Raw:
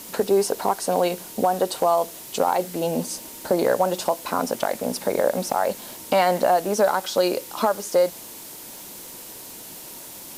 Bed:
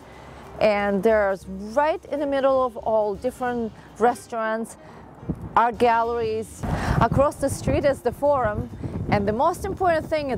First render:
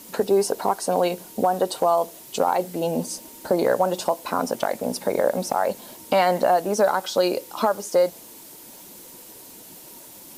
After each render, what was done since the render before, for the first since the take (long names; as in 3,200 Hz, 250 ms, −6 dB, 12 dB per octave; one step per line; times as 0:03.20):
broadband denoise 6 dB, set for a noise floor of −40 dBFS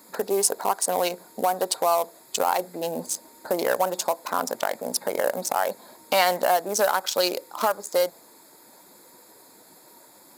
adaptive Wiener filter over 15 samples
spectral tilt +4 dB per octave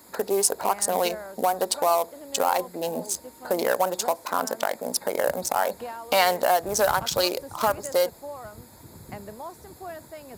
mix in bed −18 dB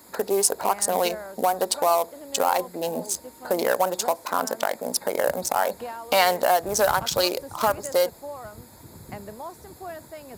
level +1 dB